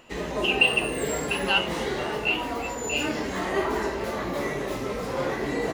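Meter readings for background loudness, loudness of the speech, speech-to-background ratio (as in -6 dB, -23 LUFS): -29.0 LUFS, -26.0 LUFS, 3.0 dB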